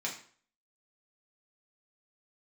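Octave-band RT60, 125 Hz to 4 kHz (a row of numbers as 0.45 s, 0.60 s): 0.45 s, 0.45 s, 0.50 s, 0.50 s, 0.45 s, 0.40 s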